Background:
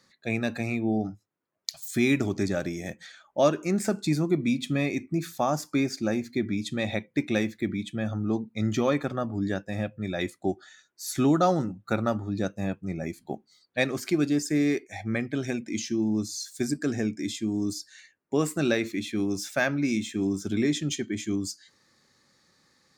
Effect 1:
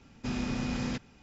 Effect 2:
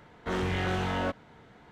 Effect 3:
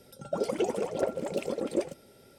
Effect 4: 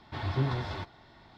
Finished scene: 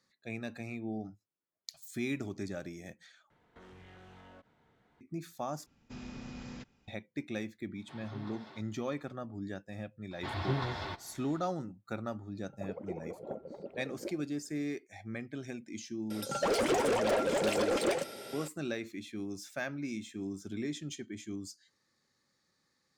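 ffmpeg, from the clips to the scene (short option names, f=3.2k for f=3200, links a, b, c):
-filter_complex "[4:a]asplit=2[a][b];[3:a]asplit=2[c][d];[0:a]volume=-12dB[e];[2:a]acompressor=threshold=-37dB:ratio=6:attack=3.2:release=140:knee=1:detection=peak[f];[a]highpass=f=160:w=0.5412,highpass=f=160:w=1.3066[g];[b]lowshelf=f=220:g=-7[h];[c]lowpass=1.1k[i];[d]asplit=2[j][k];[k]highpass=f=720:p=1,volume=27dB,asoftclip=type=tanh:threshold=-17dB[l];[j][l]amix=inputs=2:normalize=0,lowpass=f=5.7k:p=1,volume=-6dB[m];[e]asplit=3[n][o][p];[n]atrim=end=3.304[q];[f]atrim=end=1.71,asetpts=PTS-STARTPTS,volume=-15dB[r];[o]atrim=start=5.006:end=5.664[s];[1:a]atrim=end=1.22,asetpts=PTS-STARTPTS,volume=-12.5dB[t];[p]atrim=start=6.876[u];[g]atrim=end=1.37,asetpts=PTS-STARTPTS,volume=-14dB,afade=t=in:d=0.004:c=hsin,afade=t=out:st=1.366:d=0.004:c=hsin,adelay=7760[v];[h]atrim=end=1.37,asetpts=PTS-STARTPTS,afade=t=in:d=0.004:c=hsin,afade=t=out:st=1.366:d=0.004:c=hsin,adelay=10110[w];[i]atrim=end=2.38,asetpts=PTS-STARTPTS,volume=-12.5dB,afade=t=in:d=0.004:c=hsin,afade=t=out:st=2.376:d=0.004:c=hsin,adelay=12280[x];[m]atrim=end=2.38,asetpts=PTS-STARTPTS,volume=-5dB,afade=t=in:d=0.004:c=hsin,afade=t=out:st=2.376:d=0.004:c=hsin,adelay=16100[y];[q][r]acrossfade=d=0.004:c1=hsin:c2=hsin[z];[z][s]acrossfade=d=0.004:c1=hsin:c2=hsin[aa];[aa][t]acrossfade=d=0.004:c1=hsin:c2=hsin[ab];[ab][u]acrossfade=d=0.004:c1=hsin:c2=hsin[ac];[ac][v][w][x][y]amix=inputs=5:normalize=0"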